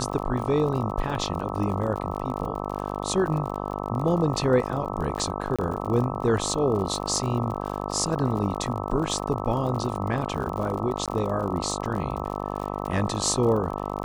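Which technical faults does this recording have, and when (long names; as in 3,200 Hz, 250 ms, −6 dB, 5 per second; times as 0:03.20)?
mains buzz 50 Hz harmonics 26 −31 dBFS
surface crackle 51 per second −32 dBFS
0:05.56–0:05.59: drop-out 26 ms
0:11.06–0:11.08: drop-out 17 ms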